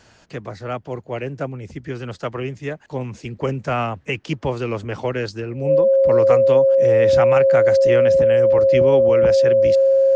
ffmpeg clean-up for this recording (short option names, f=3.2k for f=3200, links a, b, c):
-af "bandreject=f=540:w=30"